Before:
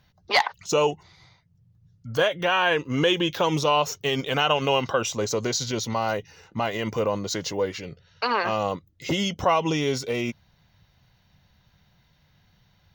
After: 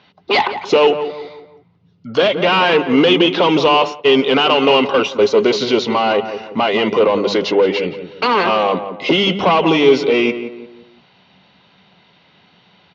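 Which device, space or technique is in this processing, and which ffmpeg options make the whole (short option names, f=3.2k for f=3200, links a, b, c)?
overdrive pedal into a guitar cabinet: -filter_complex "[0:a]asplit=2[a][b];[b]highpass=f=720:p=1,volume=21dB,asoftclip=type=tanh:threshold=-8dB[c];[a][c]amix=inputs=2:normalize=0,lowpass=f=3.6k:p=1,volume=-6dB,highpass=98,equalizer=f=120:t=q:w=4:g=-4,equalizer=f=190:t=q:w=4:g=7,equalizer=f=270:t=q:w=4:g=6,equalizer=f=400:t=q:w=4:g=8,equalizer=f=1.7k:t=q:w=4:g=-7,equalizer=f=2.8k:t=q:w=4:g=3,lowpass=f=4.4k:w=0.5412,lowpass=f=4.4k:w=1.3066,bandreject=f=50:t=h:w=6,bandreject=f=100:t=h:w=6,bandreject=f=150:t=h:w=6,bandreject=f=200:t=h:w=6,asplit=2[d][e];[e]adelay=173,lowpass=f=1.6k:p=1,volume=-9.5dB,asplit=2[f][g];[g]adelay=173,lowpass=f=1.6k:p=1,volume=0.41,asplit=2[h][i];[i]adelay=173,lowpass=f=1.6k:p=1,volume=0.41,asplit=2[j][k];[k]adelay=173,lowpass=f=1.6k:p=1,volume=0.41[l];[d][f][h][j][l]amix=inputs=5:normalize=0,asplit=3[m][n][o];[m]afade=t=out:st=3.78:d=0.02[p];[n]agate=range=-33dB:threshold=-15dB:ratio=3:detection=peak,afade=t=in:st=3.78:d=0.02,afade=t=out:st=5.48:d=0.02[q];[o]afade=t=in:st=5.48:d=0.02[r];[p][q][r]amix=inputs=3:normalize=0,volume=2dB"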